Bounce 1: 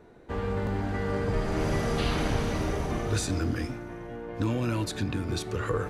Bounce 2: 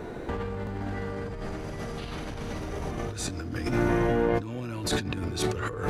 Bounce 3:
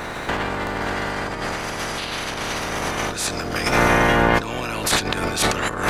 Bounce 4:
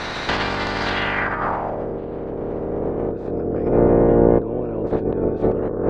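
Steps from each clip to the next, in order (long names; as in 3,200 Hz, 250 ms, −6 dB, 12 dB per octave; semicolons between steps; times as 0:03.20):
compressor whose output falls as the input rises −39 dBFS, ratio −1; level +7.5 dB
ceiling on every frequency bin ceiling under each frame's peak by 21 dB; level +8 dB
low-pass filter sweep 4,700 Hz → 450 Hz, 0:00.83–0:01.89; level +1.5 dB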